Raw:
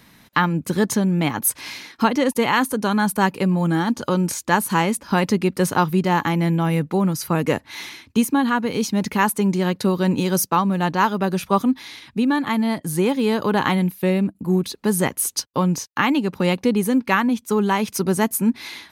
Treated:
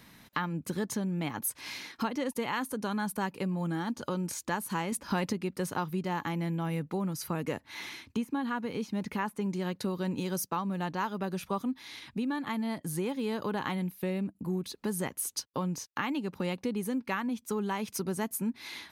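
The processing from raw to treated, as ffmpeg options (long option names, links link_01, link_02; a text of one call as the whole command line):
ffmpeg -i in.wav -filter_complex "[0:a]asettb=1/sr,asplit=3[link_01][link_02][link_03];[link_01]atrim=end=4.924[link_04];[link_02]atrim=start=4.92:end=5.33,asetpts=PTS-STARTPTS,afade=type=in:duration=0.004:curve=qsin,afade=type=out:start_time=0.406:duration=0.004:curve=qsin,acontrast=36[link_05];[link_03]atrim=start=5.326[link_06];[link_04][link_05]acrossfade=duration=0.004:curve1=hsin:curve2=qsin[link_07];[link_07][link_06]acrossfade=duration=0.004:curve1=qsin:curve2=hsin,asettb=1/sr,asplit=3[link_08][link_09][link_10];[link_08]atrim=end=7.704[link_11];[link_09]atrim=start=7.7:end=9.46,asetpts=PTS-STARTPTS,afade=type=in:duration=0.004:curve=qsin,afade=type=out:start_time=1.756:duration=0.004:curve=qsin,acrossover=split=3000[link_12][link_13];[link_13]acompressor=threshold=-39dB:ratio=4:attack=1:release=60[link_14];[link_12][link_14]amix=inputs=2:normalize=0[link_15];[link_10]atrim=start=9.456[link_16];[link_11][link_15]acrossfade=duration=0.004:curve1=hsin:curve2=qsin[link_17];[link_17][link_16]acrossfade=duration=0.004:curve1=qsin:curve2=hsin,acompressor=threshold=-32dB:ratio=2,volume=-4.5dB" out.wav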